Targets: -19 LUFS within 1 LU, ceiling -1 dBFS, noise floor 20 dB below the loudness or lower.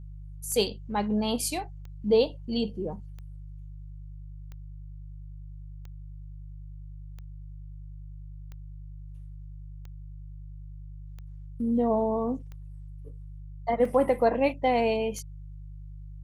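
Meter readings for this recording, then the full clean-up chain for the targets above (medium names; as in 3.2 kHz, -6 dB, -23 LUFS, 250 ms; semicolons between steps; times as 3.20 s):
clicks found 12; hum 50 Hz; highest harmonic 150 Hz; hum level -39 dBFS; loudness -27.5 LUFS; peak level -10.0 dBFS; loudness target -19.0 LUFS
-> de-click; de-hum 50 Hz, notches 3; trim +8.5 dB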